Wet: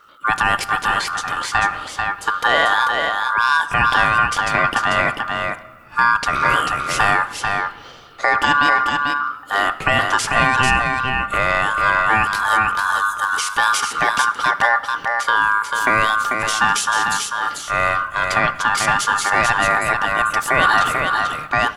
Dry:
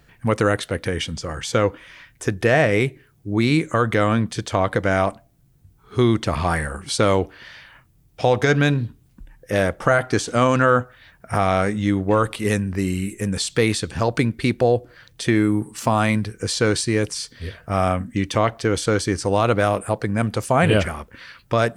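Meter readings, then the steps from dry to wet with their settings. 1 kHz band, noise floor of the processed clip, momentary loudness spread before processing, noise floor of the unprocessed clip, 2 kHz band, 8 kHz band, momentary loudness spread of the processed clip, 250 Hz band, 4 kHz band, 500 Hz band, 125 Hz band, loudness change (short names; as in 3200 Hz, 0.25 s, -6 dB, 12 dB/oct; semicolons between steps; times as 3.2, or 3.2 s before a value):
+9.0 dB, -38 dBFS, 8 LU, -57 dBFS, +10.5 dB, +4.5 dB, 6 LU, -10.0 dB, +6.0 dB, -6.5 dB, -9.5 dB, +3.5 dB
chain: low shelf 110 Hz +9 dB; ring modulator 1300 Hz; transient shaper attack 0 dB, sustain +6 dB; on a send: echo 0.442 s -4.5 dB; on the sum: shoebox room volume 3000 m³, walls mixed, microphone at 0.39 m; gain +2 dB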